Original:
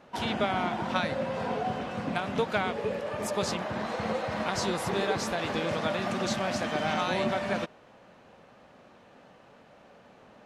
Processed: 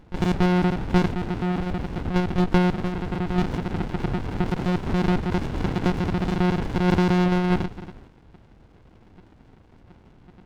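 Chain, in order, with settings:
reverb whose tail is shaped and stops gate 460 ms flat, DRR 11.5 dB
one-pitch LPC vocoder at 8 kHz 180 Hz
windowed peak hold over 65 samples
level +6 dB

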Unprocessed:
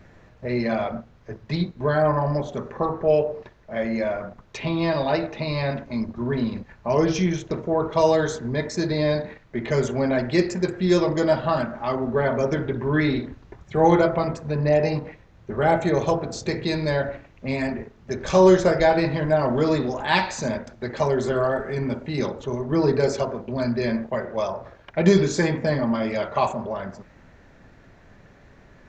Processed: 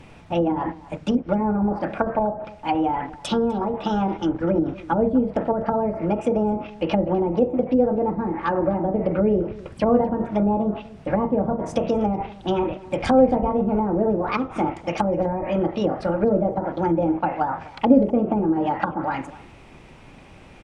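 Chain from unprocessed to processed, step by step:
treble cut that deepens with the level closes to 310 Hz, closed at −19 dBFS
change of speed 1.4×
slap from a distant wall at 43 metres, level −19 dB
level +4.5 dB

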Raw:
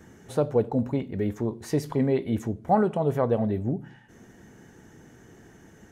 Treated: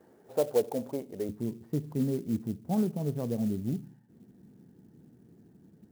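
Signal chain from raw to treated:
resonant band-pass 560 Hz, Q 1.4, from 0:01.29 190 Hz
converter with an unsteady clock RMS 0.039 ms
level −1.5 dB

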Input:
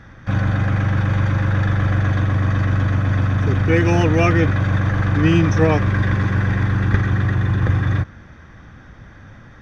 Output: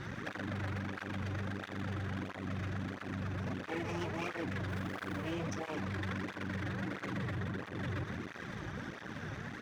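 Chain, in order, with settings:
downward compressor, threshold −18 dBFS, peak gain reduction 9 dB
parametric band 230 Hz +11.5 dB 2.3 octaves
repeating echo 164 ms, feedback 58%, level −17.5 dB
0:04.68–0:05.31: background noise pink −51 dBFS
0:06.65–0:07.31: comb filter 6.2 ms, depth 54%
half-wave rectification
brickwall limiter −25 dBFS, peak gain reduction 20.5 dB
tilt shelving filter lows −5.5 dB, about 890 Hz
through-zero flanger with one copy inverted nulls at 1.5 Hz, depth 4.7 ms
level +3.5 dB

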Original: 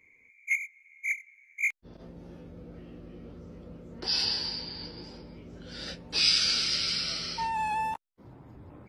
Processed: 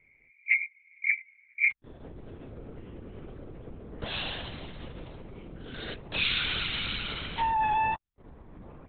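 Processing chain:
leveller curve on the samples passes 1
linear-prediction vocoder at 8 kHz whisper

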